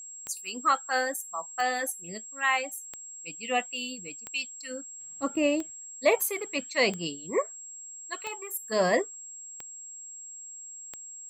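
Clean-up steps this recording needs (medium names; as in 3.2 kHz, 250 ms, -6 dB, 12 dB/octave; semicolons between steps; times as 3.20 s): de-click; band-stop 7.6 kHz, Q 30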